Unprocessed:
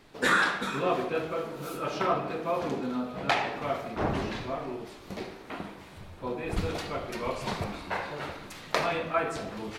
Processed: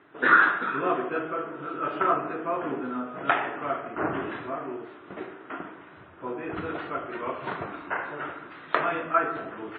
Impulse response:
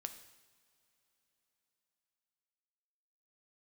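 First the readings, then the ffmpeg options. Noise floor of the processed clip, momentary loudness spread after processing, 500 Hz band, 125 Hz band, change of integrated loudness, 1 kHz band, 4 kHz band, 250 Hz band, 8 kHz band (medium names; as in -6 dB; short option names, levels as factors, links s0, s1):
-48 dBFS, 15 LU, 0.0 dB, -6.5 dB, +3.5 dB, +4.5 dB, -7.5 dB, +0.5 dB, under -35 dB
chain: -af "aeval=exprs='0.398*(cos(1*acos(clip(val(0)/0.398,-1,1)))-cos(1*PI/2))+0.0501*(cos(3*acos(clip(val(0)/0.398,-1,1)))-cos(3*PI/2))':c=same,highpass=200,equalizer=f=210:t=q:w=4:g=-10,equalizer=f=310:t=q:w=4:g=3,equalizer=f=520:t=q:w=4:g=-6,equalizer=f=830:t=q:w=4:g=-5,equalizer=f=1400:t=q:w=4:g=6,equalizer=f=2300:t=q:w=4:g=-6,lowpass=f=2500:w=0.5412,lowpass=f=2500:w=1.3066,volume=2.24" -ar 22050 -c:a wmav2 -b:a 32k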